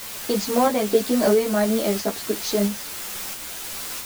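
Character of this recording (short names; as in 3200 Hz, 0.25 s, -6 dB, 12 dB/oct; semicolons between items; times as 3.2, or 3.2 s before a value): a quantiser's noise floor 6-bit, dither triangular; tremolo saw up 1.5 Hz, depth 35%; a shimmering, thickened sound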